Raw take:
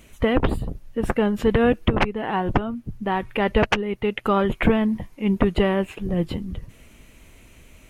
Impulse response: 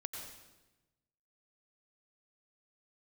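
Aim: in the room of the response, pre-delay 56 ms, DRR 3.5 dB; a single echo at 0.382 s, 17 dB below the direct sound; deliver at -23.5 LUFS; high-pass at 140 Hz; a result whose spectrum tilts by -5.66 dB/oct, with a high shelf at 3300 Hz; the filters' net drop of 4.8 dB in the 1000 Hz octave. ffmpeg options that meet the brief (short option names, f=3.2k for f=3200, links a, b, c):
-filter_complex "[0:a]highpass=140,equalizer=f=1k:t=o:g=-6,highshelf=f=3.3k:g=-5.5,aecho=1:1:382:0.141,asplit=2[a][b];[1:a]atrim=start_sample=2205,adelay=56[c];[b][c]afir=irnorm=-1:irlink=0,volume=-2.5dB[d];[a][d]amix=inputs=2:normalize=0,volume=-0.5dB"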